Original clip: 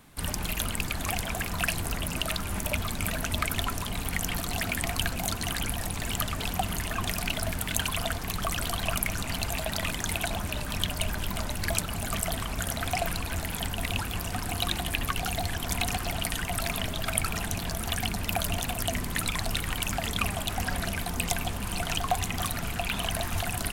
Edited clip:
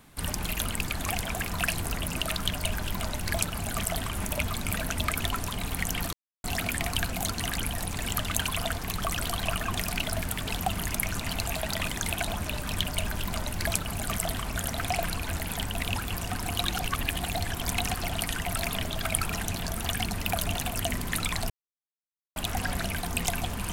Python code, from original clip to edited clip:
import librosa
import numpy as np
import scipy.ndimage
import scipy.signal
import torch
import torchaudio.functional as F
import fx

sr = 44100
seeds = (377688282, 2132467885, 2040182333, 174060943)

y = fx.edit(x, sr, fx.insert_silence(at_s=4.47, length_s=0.31),
    fx.swap(start_s=6.34, length_s=0.53, other_s=7.71, other_length_s=1.26),
    fx.duplicate(start_s=10.81, length_s=1.66, to_s=2.45),
    fx.reverse_span(start_s=14.76, length_s=0.55),
    fx.silence(start_s=19.53, length_s=0.86), tone=tone)